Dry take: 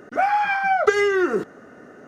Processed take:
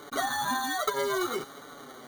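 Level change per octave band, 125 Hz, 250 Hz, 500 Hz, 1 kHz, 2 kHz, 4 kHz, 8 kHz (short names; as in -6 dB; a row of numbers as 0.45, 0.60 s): -6.0, -9.0, -11.0, -10.0, -10.5, +2.0, +6.0 dB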